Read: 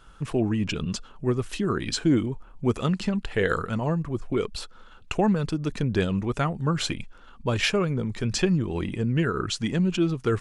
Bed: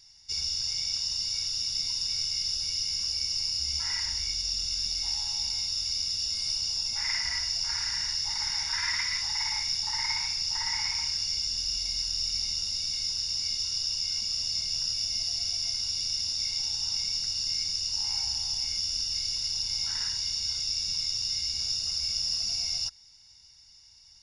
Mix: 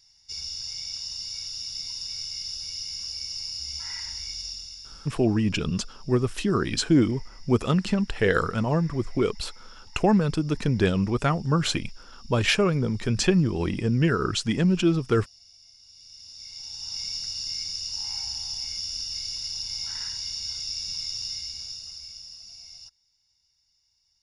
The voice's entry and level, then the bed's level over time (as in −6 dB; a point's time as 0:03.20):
4.85 s, +2.0 dB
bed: 0:04.45 −4 dB
0:05.23 −23 dB
0:15.79 −23 dB
0:17.04 −2 dB
0:21.25 −2 dB
0:22.37 −15 dB